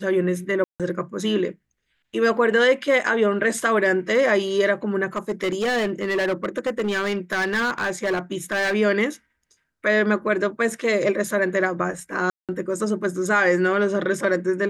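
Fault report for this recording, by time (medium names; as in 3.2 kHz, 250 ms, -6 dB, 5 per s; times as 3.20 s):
0.64–0.80 s: dropout 157 ms
5.16–8.75 s: clipped -19 dBFS
12.30–12.49 s: dropout 187 ms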